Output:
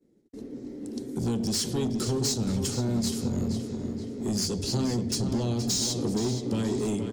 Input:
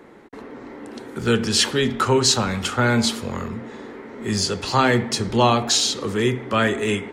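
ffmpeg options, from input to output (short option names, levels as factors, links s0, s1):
-filter_complex "[0:a]bandreject=f=50:t=h:w=6,bandreject=f=100:t=h:w=6,agate=range=0.0224:threshold=0.02:ratio=3:detection=peak,firequalizer=gain_entry='entry(280,0);entry(980,-27);entry(5200,-1)':delay=0.05:min_phase=1,acompressor=threshold=0.0562:ratio=6,asoftclip=type=tanh:threshold=0.0447,asplit=2[s0][s1];[s1]adelay=473,lowpass=f=4700:p=1,volume=0.447,asplit=2[s2][s3];[s3]adelay=473,lowpass=f=4700:p=1,volume=0.47,asplit=2[s4][s5];[s5]adelay=473,lowpass=f=4700:p=1,volume=0.47,asplit=2[s6][s7];[s7]adelay=473,lowpass=f=4700:p=1,volume=0.47,asplit=2[s8][s9];[s9]adelay=473,lowpass=f=4700:p=1,volume=0.47,asplit=2[s10][s11];[s11]adelay=473,lowpass=f=4700:p=1,volume=0.47[s12];[s0][s2][s4][s6][s8][s10][s12]amix=inputs=7:normalize=0,volume=1.58"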